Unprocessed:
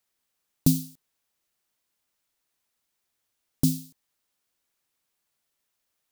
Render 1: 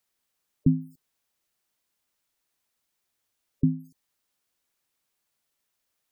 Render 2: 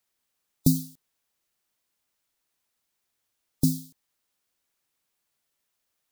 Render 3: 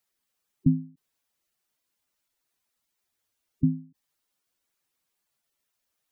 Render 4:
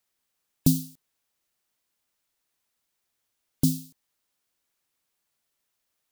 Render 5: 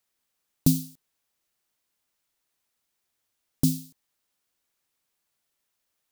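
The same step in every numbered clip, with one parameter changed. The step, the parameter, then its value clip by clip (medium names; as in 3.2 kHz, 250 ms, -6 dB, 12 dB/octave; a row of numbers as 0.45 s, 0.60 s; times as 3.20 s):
spectral gate, under each frame's peak: -20 dB, -35 dB, -10 dB, -45 dB, -60 dB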